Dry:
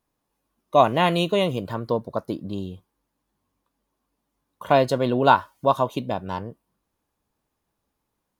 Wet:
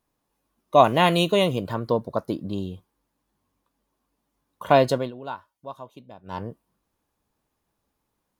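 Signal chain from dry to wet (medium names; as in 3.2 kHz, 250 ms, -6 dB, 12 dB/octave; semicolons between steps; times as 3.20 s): 0.84–1.49 s: treble shelf 5.2 kHz +5.5 dB; 4.91–6.44 s: dip -19 dB, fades 0.21 s; trim +1 dB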